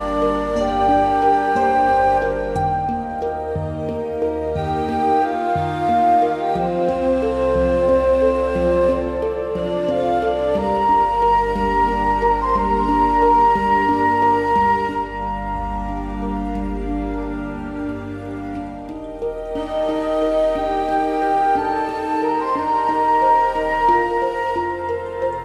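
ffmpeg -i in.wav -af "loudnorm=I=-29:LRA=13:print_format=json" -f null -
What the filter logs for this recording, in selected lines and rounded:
"input_i" : "-18.9",
"input_tp" : "-5.3",
"input_lra" : "5.8",
"input_thresh" : "-28.9",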